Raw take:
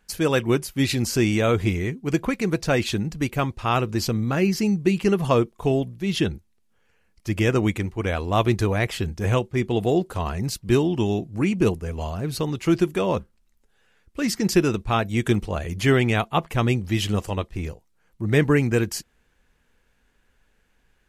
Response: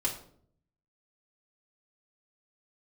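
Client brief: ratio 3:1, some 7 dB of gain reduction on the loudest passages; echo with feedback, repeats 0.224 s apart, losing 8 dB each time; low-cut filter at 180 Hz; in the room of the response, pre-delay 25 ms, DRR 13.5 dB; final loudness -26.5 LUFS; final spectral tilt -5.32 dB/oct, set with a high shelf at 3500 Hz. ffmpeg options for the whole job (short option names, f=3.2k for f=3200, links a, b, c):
-filter_complex "[0:a]highpass=180,highshelf=f=3.5k:g=-8.5,acompressor=threshold=-24dB:ratio=3,aecho=1:1:224|448|672|896|1120:0.398|0.159|0.0637|0.0255|0.0102,asplit=2[a][b];[1:a]atrim=start_sample=2205,adelay=25[c];[b][c]afir=irnorm=-1:irlink=0,volume=-18.5dB[d];[a][d]amix=inputs=2:normalize=0,volume=2dB"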